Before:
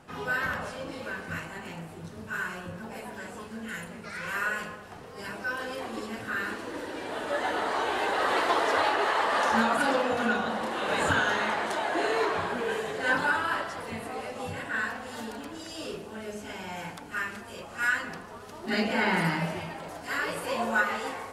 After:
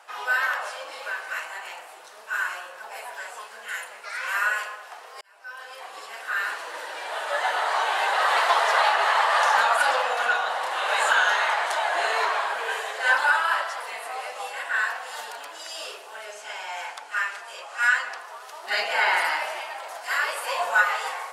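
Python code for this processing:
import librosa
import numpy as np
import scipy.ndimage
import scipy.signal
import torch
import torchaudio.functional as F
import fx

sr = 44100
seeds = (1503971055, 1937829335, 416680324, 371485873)

y = fx.lowpass(x, sr, hz=9400.0, slope=12, at=(16.25, 18.19))
y = fx.edit(y, sr, fx.fade_in_span(start_s=5.21, length_s=1.28), tone=tone)
y = scipy.signal.sosfilt(scipy.signal.butter(4, 650.0, 'highpass', fs=sr, output='sos'), y)
y = F.gain(torch.from_numpy(y), 6.0).numpy()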